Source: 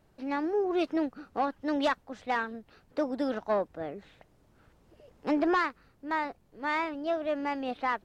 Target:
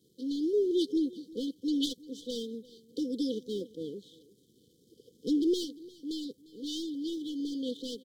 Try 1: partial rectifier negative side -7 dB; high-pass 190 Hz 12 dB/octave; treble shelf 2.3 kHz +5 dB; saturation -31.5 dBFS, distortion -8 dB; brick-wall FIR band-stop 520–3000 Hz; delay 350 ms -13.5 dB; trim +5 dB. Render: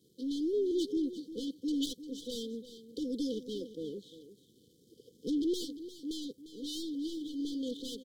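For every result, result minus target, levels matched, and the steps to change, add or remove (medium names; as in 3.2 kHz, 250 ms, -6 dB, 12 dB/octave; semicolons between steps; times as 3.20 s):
saturation: distortion +9 dB; echo-to-direct +7.5 dB
change: saturation -22 dBFS, distortion -17 dB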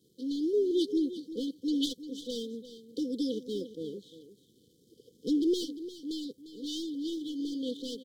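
echo-to-direct +7.5 dB
change: delay 350 ms -21 dB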